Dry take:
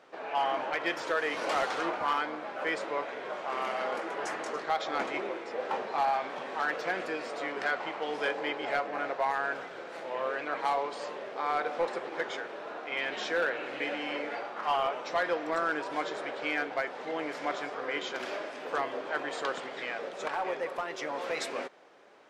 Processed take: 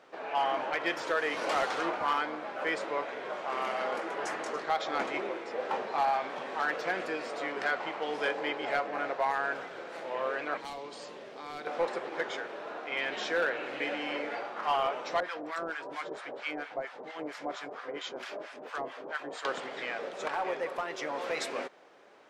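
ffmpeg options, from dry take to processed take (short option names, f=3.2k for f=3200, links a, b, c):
-filter_complex "[0:a]asettb=1/sr,asplit=3[a][b][c];[a]atrim=end=10.574[d];[b]atrim=start=10.57:end=11.67,asetpts=PTS-STARTPTS,afade=t=in:d=0.004:c=qsin,afade=t=out:st=1.096:d=0.004:c=qsin,acrossover=split=320|3000[e][f][g];[f]acompressor=threshold=-52dB:ratio=2:attack=3.2:release=140:knee=2.83:detection=peak[h];[e][h][g]amix=inputs=3:normalize=0[i];[c]atrim=start=11.666[j];[d][i]acrossfade=d=0.004:c1=hsin:c2=qsin[k];[k][j]acrossfade=d=0.004:c1=qsin:c2=hsin,asettb=1/sr,asplit=3[l][m][n];[l]atrim=end=15.204[o];[m]atrim=start=15.2:end=19.45,asetpts=PTS-STARTPTS,afade=t=in:d=0.004:c=qsin,afade=t=out:st=4.246:d=0.004:c=qsin,acrossover=split=910[p][q];[p]aeval=exprs='val(0)*(1-1/2+1/2*cos(2*PI*4.4*n/s))':c=same[r];[q]aeval=exprs='val(0)*(1-1/2-1/2*cos(2*PI*4.4*n/s))':c=same[s];[r][s]amix=inputs=2:normalize=0[t];[n]atrim=start=19.446[u];[o][t]acrossfade=d=0.004:c1=hsin:c2=qsin[v];[v][u]acrossfade=d=0.004:c1=qsin:c2=hsin"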